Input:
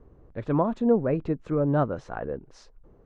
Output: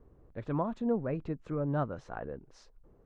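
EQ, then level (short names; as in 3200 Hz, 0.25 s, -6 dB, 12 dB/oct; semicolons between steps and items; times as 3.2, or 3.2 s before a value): dynamic EQ 410 Hz, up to -4 dB, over -33 dBFS, Q 0.84; -6.0 dB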